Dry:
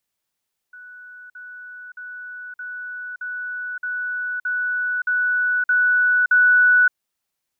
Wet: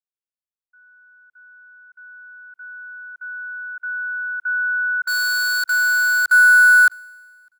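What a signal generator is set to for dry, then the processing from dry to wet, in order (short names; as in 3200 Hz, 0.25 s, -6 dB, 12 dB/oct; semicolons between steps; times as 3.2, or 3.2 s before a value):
level ladder 1480 Hz -38 dBFS, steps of 3 dB, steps 10, 0.57 s 0.05 s
in parallel at -7 dB: wrapped overs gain 18 dB; on the sum: feedback echo 0.603 s, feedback 31%, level -23 dB; three-band expander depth 70%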